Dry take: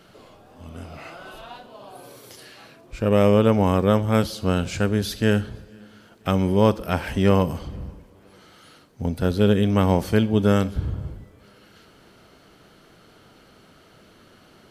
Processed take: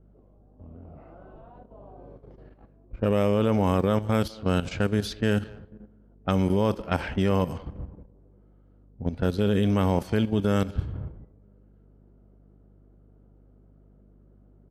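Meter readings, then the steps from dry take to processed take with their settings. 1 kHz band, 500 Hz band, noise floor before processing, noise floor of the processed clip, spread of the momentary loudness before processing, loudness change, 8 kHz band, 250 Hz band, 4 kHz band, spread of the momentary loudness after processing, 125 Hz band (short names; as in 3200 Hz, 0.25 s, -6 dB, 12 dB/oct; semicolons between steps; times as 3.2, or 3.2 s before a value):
-4.5 dB, -5.0 dB, -53 dBFS, -56 dBFS, 20 LU, -4.5 dB, -7.0 dB, -4.5 dB, -5.0 dB, 14 LU, -4.0 dB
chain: hum 50 Hz, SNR 25 dB; level quantiser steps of 11 dB; low-pass opened by the level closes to 440 Hz, open at -20.5 dBFS; speakerphone echo 0.2 s, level -21 dB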